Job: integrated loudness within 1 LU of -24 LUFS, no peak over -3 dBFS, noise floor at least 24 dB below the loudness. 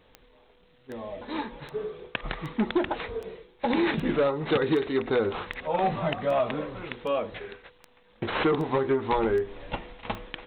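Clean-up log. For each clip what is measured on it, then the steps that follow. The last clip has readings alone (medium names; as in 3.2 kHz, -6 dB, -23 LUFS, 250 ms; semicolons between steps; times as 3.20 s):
clicks found 14; loudness -28.5 LUFS; peak level -14.5 dBFS; loudness target -24.0 LUFS
-> de-click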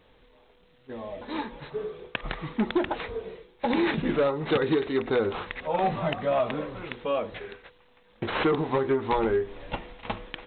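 clicks found 0; loudness -28.5 LUFS; peak level -14.5 dBFS; loudness target -24.0 LUFS
-> trim +4.5 dB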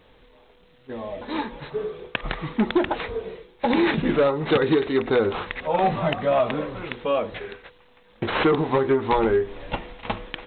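loudness -24.0 LUFS; peak level -10.0 dBFS; noise floor -56 dBFS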